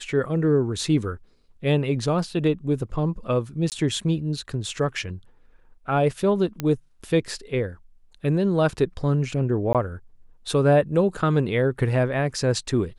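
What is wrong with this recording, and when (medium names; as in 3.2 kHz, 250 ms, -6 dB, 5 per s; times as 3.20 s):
3.70–3.72 s: dropout 18 ms
6.60 s: pop -13 dBFS
9.73–9.75 s: dropout 17 ms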